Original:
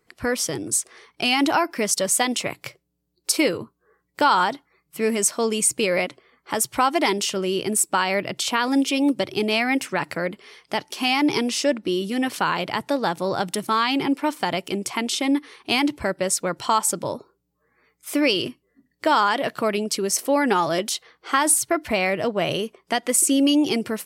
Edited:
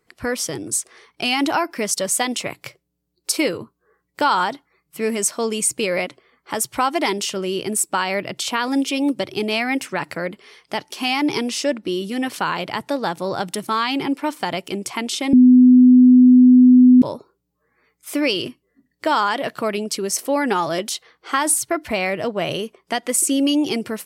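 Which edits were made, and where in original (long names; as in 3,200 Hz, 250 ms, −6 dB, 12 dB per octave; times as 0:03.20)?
0:15.33–0:17.02: beep over 251 Hz −6 dBFS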